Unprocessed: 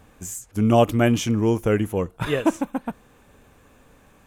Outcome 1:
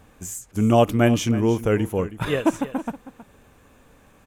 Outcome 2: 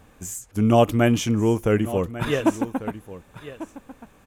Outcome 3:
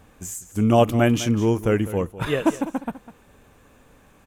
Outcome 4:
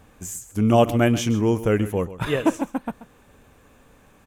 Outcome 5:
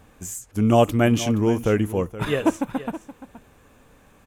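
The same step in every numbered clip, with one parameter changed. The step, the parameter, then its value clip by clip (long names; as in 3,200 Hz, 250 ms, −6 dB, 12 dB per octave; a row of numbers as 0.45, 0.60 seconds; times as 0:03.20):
single-tap delay, delay time: 319, 1,145, 201, 133, 473 milliseconds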